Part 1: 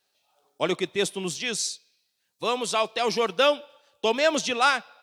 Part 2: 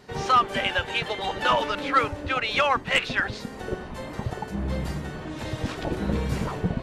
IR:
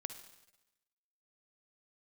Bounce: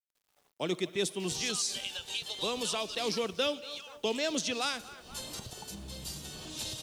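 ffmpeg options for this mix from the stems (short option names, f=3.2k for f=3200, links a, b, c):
-filter_complex "[0:a]volume=-5.5dB,asplit=3[a][b][c];[b]volume=-9.5dB[d];[c]volume=-20.5dB[e];[1:a]acompressor=threshold=-35dB:ratio=4,aexciter=amount=9:drive=6.1:freq=2.9k,adelay=1200,volume=0.5dB,afade=t=out:st=3.12:d=0.28:silence=0.354813,afade=t=in:st=4.97:d=0.22:silence=0.298538[f];[2:a]atrim=start_sample=2205[g];[d][g]afir=irnorm=-1:irlink=0[h];[e]aecho=0:1:237|474|711|948|1185|1422:1|0.42|0.176|0.0741|0.0311|0.0131[i];[a][f][h][i]amix=inputs=4:normalize=0,acrossover=split=420|3000[j][k][l];[k]acompressor=threshold=-40dB:ratio=3[m];[j][m][l]amix=inputs=3:normalize=0,acrusher=bits=10:mix=0:aa=0.000001"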